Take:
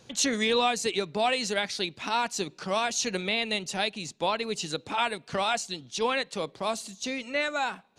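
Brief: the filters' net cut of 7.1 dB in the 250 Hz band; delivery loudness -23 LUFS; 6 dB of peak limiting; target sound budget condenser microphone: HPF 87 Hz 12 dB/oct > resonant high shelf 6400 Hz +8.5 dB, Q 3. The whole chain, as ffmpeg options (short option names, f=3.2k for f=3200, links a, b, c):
-af "equalizer=f=250:t=o:g=-9,alimiter=limit=-18.5dB:level=0:latency=1,highpass=87,highshelf=f=6.4k:t=q:w=3:g=8.5,volume=6dB"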